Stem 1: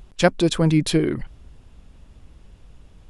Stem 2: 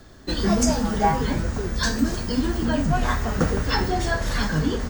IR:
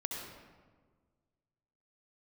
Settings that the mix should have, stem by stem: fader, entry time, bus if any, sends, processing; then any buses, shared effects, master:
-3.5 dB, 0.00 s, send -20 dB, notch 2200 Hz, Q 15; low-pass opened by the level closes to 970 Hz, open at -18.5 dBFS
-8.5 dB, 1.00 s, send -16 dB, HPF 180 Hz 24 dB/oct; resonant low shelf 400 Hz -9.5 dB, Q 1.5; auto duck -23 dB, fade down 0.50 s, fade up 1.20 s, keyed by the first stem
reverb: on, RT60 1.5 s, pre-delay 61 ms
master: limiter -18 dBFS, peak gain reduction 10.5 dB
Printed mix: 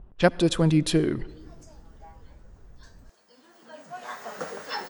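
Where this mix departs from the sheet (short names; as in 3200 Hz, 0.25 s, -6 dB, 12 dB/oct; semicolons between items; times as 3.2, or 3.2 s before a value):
stem 2: send off; master: missing limiter -18 dBFS, peak gain reduction 10.5 dB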